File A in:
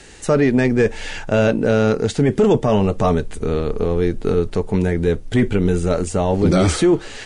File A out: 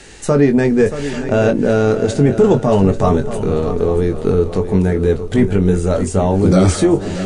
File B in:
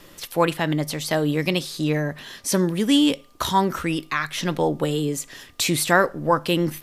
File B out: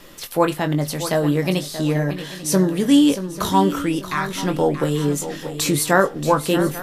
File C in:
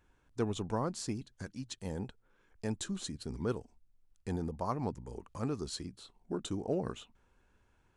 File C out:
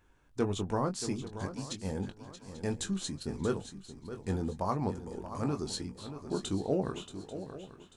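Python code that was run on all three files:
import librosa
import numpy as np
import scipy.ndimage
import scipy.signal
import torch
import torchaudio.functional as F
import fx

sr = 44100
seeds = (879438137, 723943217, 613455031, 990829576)

p1 = fx.hum_notches(x, sr, base_hz=60, count=2)
p2 = fx.doubler(p1, sr, ms=21.0, db=-8.0)
p3 = fx.dynamic_eq(p2, sr, hz=2700.0, q=0.73, threshold_db=-37.0, ratio=4.0, max_db=-6)
p4 = p3 + fx.echo_swing(p3, sr, ms=840, ratio=3, feedback_pct=30, wet_db=-11.5, dry=0)
y = F.gain(torch.from_numpy(p4), 2.5).numpy()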